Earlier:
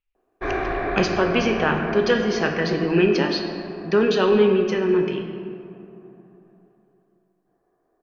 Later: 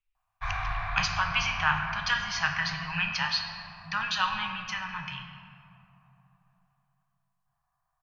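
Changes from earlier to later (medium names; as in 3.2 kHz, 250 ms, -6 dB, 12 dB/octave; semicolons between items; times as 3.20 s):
background: add peaking EQ 1.7 kHz -6 dB 0.6 oct; master: add Chebyshev band-stop 130–940 Hz, order 3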